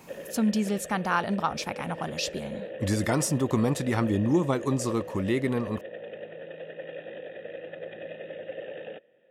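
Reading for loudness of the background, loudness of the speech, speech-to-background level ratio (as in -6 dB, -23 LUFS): -40.0 LUFS, -28.0 LUFS, 12.0 dB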